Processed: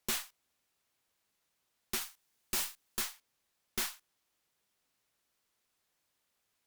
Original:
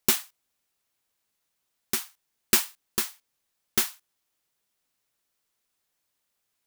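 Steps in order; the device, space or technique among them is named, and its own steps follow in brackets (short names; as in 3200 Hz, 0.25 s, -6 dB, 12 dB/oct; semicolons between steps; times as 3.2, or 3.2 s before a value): 2.01–3.01 high shelf 4600 Hz +5 dB; tube preamp driven hard (tube stage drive 29 dB, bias 0.4; high shelf 6400 Hz -5 dB); gain +2.5 dB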